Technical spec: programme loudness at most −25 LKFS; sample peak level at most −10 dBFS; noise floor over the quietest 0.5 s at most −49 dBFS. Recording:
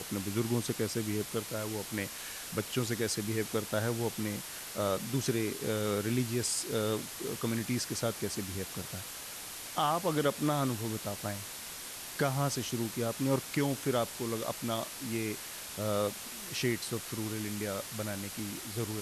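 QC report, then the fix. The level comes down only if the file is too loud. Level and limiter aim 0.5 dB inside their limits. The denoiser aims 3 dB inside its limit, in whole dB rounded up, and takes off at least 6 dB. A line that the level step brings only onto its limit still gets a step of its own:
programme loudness −34.0 LKFS: in spec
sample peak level −17.0 dBFS: in spec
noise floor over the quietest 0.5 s −44 dBFS: out of spec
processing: broadband denoise 8 dB, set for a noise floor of −44 dBFS

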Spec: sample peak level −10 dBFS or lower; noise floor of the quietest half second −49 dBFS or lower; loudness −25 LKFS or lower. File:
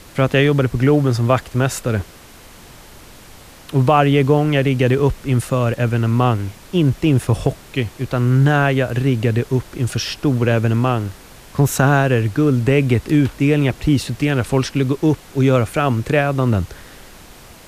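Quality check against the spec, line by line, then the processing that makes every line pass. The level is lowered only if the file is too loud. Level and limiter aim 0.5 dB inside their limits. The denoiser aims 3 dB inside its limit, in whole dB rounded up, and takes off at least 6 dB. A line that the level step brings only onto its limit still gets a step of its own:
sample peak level −1.5 dBFS: out of spec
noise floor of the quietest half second −42 dBFS: out of spec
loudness −17.5 LKFS: out of spec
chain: level −8 dB
brickwall limiter −10.5 dBFS

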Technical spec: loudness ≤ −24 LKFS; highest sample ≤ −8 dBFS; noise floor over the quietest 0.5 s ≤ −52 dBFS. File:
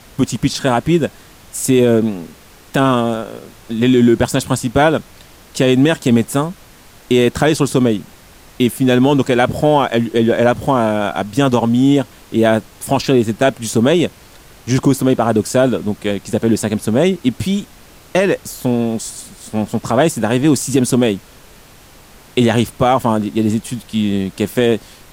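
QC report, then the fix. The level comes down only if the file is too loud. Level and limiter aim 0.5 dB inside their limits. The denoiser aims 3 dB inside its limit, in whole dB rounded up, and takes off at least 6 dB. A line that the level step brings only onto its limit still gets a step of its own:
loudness −15.5 LKFS: out of spec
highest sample −2.5 dBFS: out of spec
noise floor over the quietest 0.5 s −43 dBFS: out of spec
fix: broadband denoise 6 dB, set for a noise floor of −43 dBFS
level −9 dB

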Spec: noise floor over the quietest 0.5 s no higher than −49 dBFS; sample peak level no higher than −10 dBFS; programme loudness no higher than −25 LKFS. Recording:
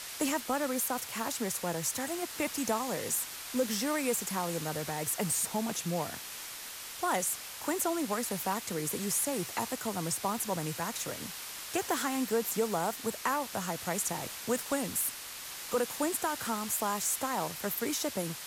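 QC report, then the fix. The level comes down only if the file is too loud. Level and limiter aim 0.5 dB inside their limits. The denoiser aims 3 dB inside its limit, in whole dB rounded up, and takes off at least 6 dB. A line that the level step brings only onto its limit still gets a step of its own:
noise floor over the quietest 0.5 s −43 dBFS: out of spec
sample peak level −18.0 dBFS: in spec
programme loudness −32.5 LKFS: in spec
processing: broadband denoise 9 dB, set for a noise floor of −43 dBFS

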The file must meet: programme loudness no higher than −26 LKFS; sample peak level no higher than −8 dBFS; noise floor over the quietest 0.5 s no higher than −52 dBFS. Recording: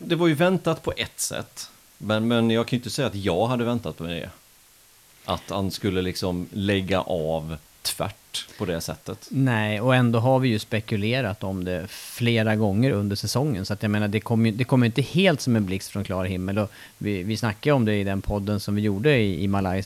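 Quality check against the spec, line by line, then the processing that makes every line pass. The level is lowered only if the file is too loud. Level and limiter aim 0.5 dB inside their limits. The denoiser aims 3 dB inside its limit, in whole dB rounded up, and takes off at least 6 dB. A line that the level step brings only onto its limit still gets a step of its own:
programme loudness −24.0 LKFS: out of spec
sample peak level −5.5 dBFS: out of spec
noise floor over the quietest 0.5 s −54 dBFS: in spec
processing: level −2.5 dB
brickwall limiter −8.5 dBFS

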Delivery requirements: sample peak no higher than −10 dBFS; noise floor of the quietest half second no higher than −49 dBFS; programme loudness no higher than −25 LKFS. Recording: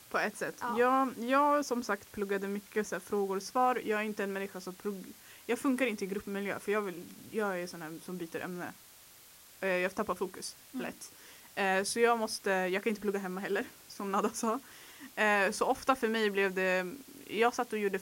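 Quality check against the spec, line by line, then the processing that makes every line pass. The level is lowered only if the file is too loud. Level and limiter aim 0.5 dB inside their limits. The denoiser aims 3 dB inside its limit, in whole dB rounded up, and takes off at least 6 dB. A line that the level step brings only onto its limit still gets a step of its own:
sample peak −13.5 dBFS: in spec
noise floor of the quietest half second −56 dBFS: in spec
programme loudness −33.0 LKFS: in spec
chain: no processing needed

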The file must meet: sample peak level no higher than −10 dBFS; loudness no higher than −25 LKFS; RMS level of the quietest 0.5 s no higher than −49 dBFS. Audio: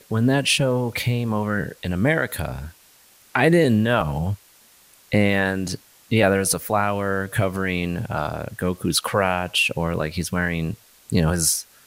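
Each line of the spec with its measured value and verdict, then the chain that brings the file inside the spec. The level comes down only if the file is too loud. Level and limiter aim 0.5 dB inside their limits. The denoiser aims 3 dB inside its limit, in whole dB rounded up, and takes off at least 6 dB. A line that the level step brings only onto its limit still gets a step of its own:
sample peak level −4.5 dBFS: out of spec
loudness −22.0 LKFS: out of spec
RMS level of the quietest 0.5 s −53 dBFS: in spec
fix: level −3.5 dB
brickwall limiter −10.5 dBFS

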